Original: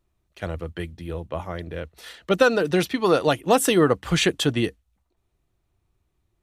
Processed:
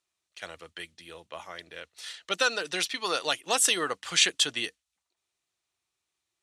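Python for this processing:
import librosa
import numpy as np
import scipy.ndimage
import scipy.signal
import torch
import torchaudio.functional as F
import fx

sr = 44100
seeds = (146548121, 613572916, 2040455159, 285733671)

y = fx.weighting(x, sr, curve='ITU-R 468')
y = y * librosa.db_to_amplitude(-7.5)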